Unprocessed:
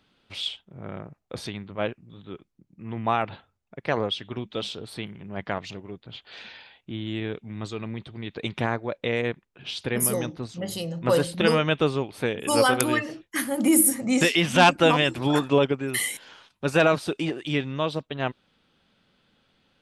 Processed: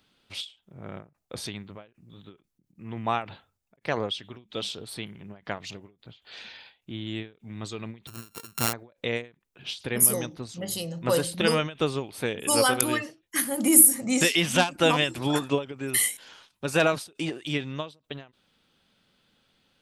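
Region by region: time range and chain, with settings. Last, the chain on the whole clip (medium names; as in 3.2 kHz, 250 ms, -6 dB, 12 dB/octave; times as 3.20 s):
8.07–8.73 s: sorted samples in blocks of 32 samples + treble shelf 6.3 kHz +4 dB
whole clip: treble shelf 5.2 kHz +11 dB; endings held to a fixed fall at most 200 dB/s; trim -3 dB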